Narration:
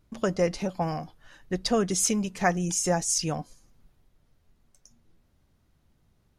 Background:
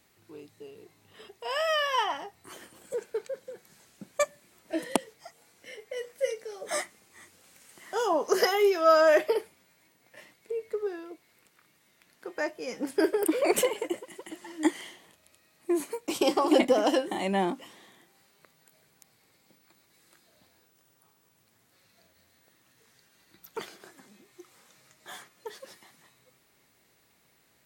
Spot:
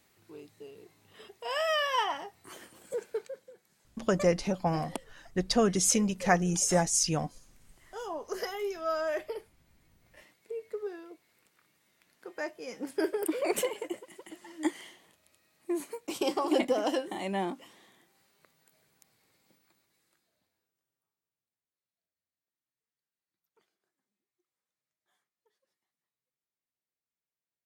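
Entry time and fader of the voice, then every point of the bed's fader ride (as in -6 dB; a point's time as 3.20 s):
3.85 s, -0.5 dB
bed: 3.15 s -1.5 dB
3.56 s -11.5 dB
9.36 s -11.5 dB
10.28 s -5 dB
19.55 s -5 dB
21.71 s -34.5 dB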